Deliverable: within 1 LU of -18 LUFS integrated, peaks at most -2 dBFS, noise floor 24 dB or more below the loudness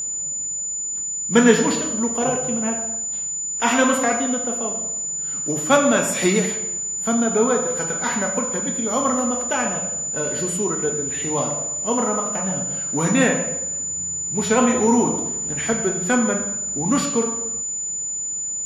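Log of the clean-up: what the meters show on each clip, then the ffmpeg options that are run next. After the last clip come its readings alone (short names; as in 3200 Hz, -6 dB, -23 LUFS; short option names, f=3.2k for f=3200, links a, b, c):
steady tone 7000 Hz; tone level -24 dBFS; loudness -20.5 LUFS; peak -1.0 dBFS; loudness target -18.0 LUFS
-> -af "bandreject=f=7k:w=30"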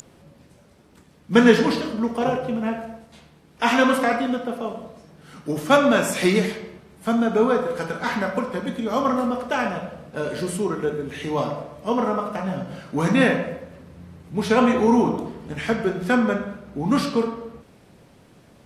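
steady tone none; loudness -22.5 LUFS; peak -1.5 dBFS; loudness target -18.0 LUFS
-> -af "volume=4.5dB,alimiter=limit=-2dB:level=0:latency=1"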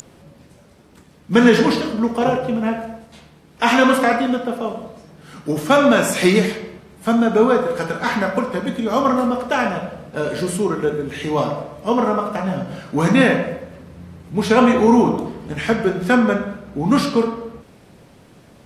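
loudness -18.5 LUFS; peak -2.0 dBFS; noise floor -49 dBFS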